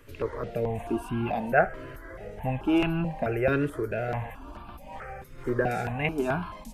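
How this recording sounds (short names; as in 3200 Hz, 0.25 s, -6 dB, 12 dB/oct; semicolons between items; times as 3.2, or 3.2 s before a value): notches that jump at a steady rate 4.6 Hz 200–1900 Hz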